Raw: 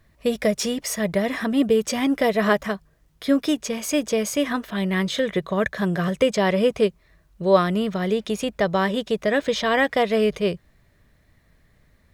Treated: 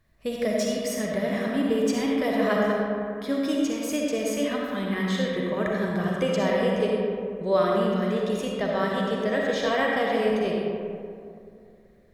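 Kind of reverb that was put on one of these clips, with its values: digital reverb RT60 2.5 s, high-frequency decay 0.4×, pre-delay 20 ms, DRR -2.5 dB; gain -8 dB

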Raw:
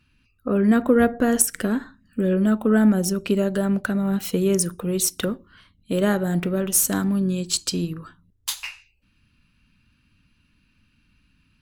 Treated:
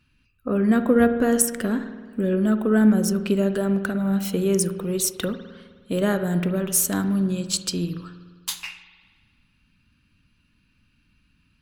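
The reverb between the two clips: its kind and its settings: spring tank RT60 1.6 s, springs 51 ms, chirp 25 ms, DRR 10.5 dB; gain -1.5 dB

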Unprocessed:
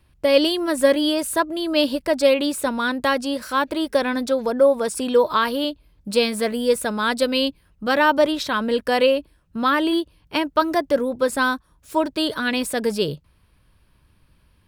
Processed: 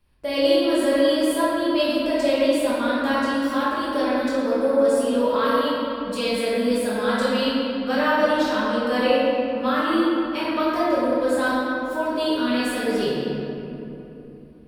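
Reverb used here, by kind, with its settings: shoebox room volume 150 m³, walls hard, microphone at 1.3 m; gain -11.5 dB

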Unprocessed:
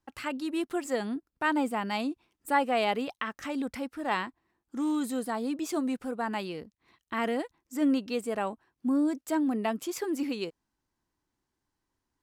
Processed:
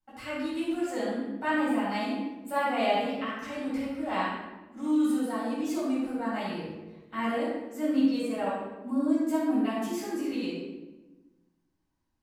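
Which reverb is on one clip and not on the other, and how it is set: shoebox room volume 580 m³, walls mixed, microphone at 7.4 m; gain -14.5 dB

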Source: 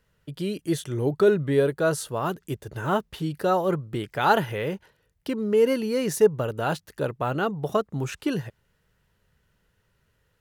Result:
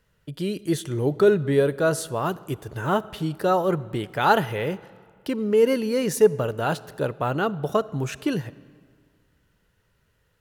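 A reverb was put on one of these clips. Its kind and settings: digital reverb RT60 1.9 s, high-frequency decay 0.75×, pre-delay 10 ms, DRR 19 dB; gain +1.5 dB

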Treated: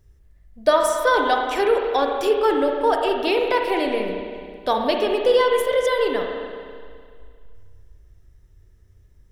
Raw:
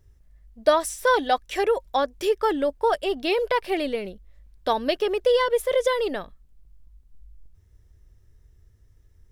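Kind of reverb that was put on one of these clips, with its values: spring tank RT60 2.1 s, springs 32/54 ms, chirp 35 ms, DRR 1.5 dB; gain +1.5 dB

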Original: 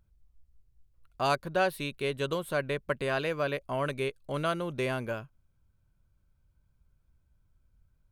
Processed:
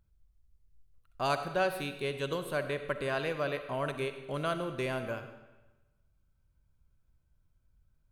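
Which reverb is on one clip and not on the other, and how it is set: digital reverb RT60 1.1 s, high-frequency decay 0.9×, pre-delay 20 ms, DRR 8.5 dB; gain -3 dB

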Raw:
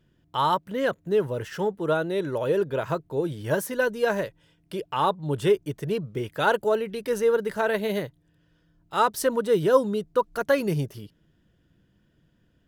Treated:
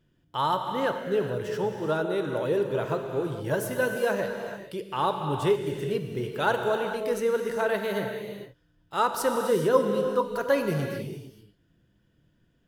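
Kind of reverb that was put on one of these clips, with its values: non-linear reverb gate 0.48 s flat, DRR 4 dB; gain -3 dB

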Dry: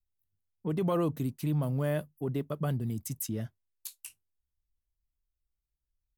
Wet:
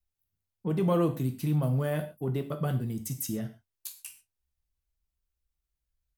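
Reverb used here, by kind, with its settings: non-linear reverb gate 0.16 s falling, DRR 5 dB; gain +1 dB

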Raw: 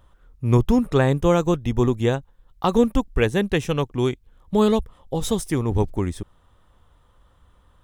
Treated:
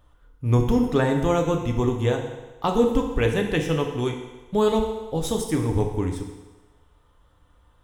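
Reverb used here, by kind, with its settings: FDN reverb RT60 1.2 s, low-frequency decay 0.75×, high-frequency decay 0.95×, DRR 2 dB; gain -3.5 dB

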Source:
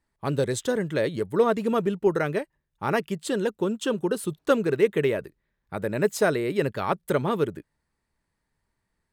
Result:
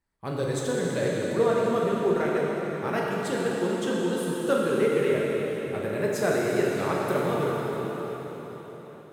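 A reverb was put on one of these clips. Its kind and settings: plate-style reverb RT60 4.9 s, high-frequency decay 0.95×, DRR -4.5 dB; gain -6 dB

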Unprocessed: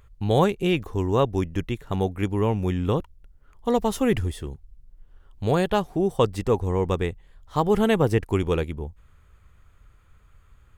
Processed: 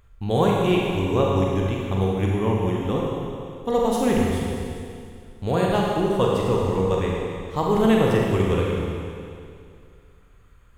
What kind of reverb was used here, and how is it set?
Schroeder reverb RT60 2.4 s, combs from 32 ms, DRR -3 dB; gain -2.5 dB

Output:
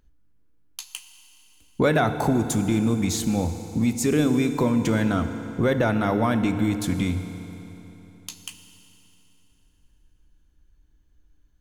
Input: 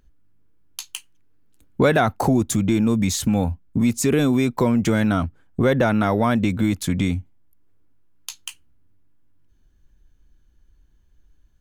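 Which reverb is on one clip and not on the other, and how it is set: FDN reverb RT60 3.5 s, high-frequency decay 0.85×, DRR 8 dB; gain -3.5 dB

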